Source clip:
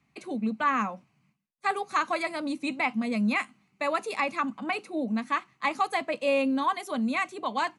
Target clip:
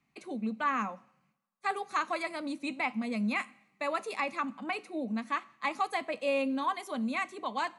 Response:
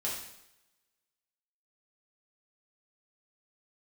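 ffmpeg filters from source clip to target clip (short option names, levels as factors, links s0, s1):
-filter_complex "[0:a]equalizer=f=100:t=o:w=0.81:g=-8.5,asplit=2[s0][s1];[1:a]atrim=start_sample=2205[s2];[s1][s2]afir=irnorm=-1:irlink=0,volume=0.0841[s3];[s0][s3]amix=inputs=2:normalize=0,volume=0.562"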